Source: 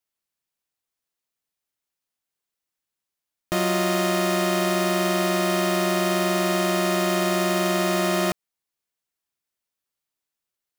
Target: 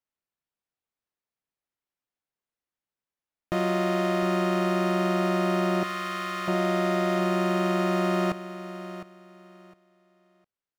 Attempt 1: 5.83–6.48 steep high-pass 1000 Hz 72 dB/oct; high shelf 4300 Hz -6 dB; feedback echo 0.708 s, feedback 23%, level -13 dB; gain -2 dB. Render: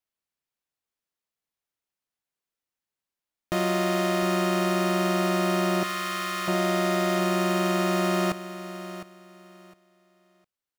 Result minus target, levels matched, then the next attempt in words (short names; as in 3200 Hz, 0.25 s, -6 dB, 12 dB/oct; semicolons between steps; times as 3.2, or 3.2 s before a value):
8000 Hz band +8.0 dB
5.83–6.48 steep high-pass 1000 Hz 72 dB/oct; high shelf 4300 Hz -17.5 dB; feedback echo 0.708 s, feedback 23%, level -13 dB; gain -2 dB